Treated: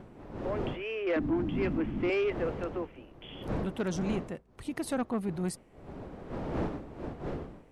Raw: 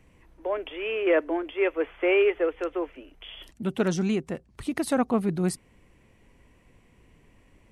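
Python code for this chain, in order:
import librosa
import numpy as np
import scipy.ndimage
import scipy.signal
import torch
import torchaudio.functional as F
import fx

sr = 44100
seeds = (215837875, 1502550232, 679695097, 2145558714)

y = fx.dmg_wind(x, sr, seeds[0], corner_hz=430.0, level_db=-33.0)
y = fx.low_shelf_res(y, sr, hz=360.0, db=9.0, q=3.0, at=(1.16, 2.1))
y = 10.0 ** (-16.5 / 20.0) * np.tanh(y / 10.0 ** (-16.5 / 20.0))
y = y * librosa.db_to_amplitude(-6.0)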